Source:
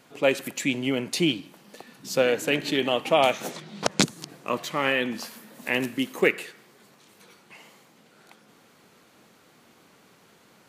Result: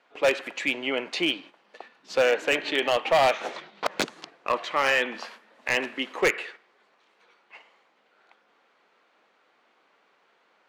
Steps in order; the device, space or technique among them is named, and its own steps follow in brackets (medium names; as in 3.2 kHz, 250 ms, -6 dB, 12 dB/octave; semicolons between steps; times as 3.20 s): walkie-talkie (band-pass 550–2900 Hz; hard clipper -20.5 dBFS, distortion -11 dB; gate -49 dBFS, range -9 dB); trim +5 dB